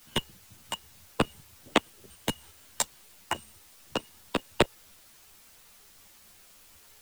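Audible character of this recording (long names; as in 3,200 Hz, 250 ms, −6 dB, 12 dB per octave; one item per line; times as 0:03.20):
tremolo saw up 2.8 Hz, depth 70%
a quantiser's noise floor 10 bits, dither triangular
a shimmering, thickened sound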